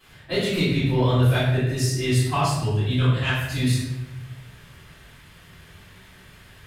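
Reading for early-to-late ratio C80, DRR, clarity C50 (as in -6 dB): 3.5 dB, -14.0 dB, 0.0 dB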